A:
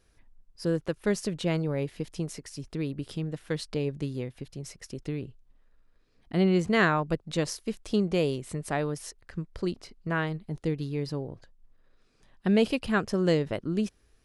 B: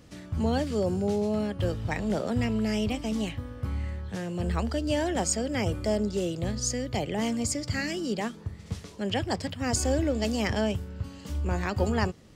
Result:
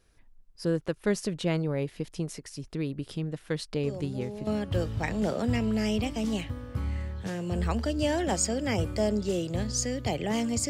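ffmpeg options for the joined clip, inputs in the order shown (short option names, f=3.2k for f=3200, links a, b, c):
-filter_complex "[1:a]asplit=2[a][b];[0:a]apad=whole_dur=10.69,atrim=end=10.69,atrim=end=4.472[c];[b]atrim=start=1.348:end=7.57[d];[a]atrim=start=0.71:end=1.35,asetpts=PTS-STARTPTS,volume=-12dB,afade=t=in:d=0.004:c=hsin,afade=t=out:st=0.636:d=0.004:c=hsin,adelay=3830[e];[c][d]acrossfade=d=0.004:c1=hsin:c2=hsin[f];[f][e]amix=inputs=2:normalize=0"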